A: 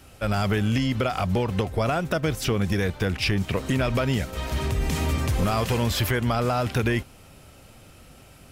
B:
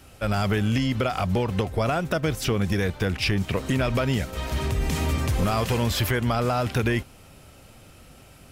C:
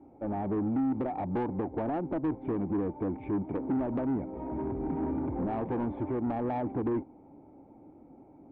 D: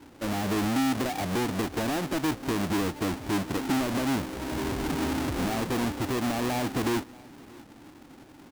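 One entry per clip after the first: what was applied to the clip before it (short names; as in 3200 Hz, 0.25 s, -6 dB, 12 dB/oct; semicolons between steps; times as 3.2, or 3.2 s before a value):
nothing audible
vocal tract filter u; overdrive pedal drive 22 dB, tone 2300 Hz, clips at -21.5 dBFS
half-waves squared off; echo 0.632 s -23.5 dB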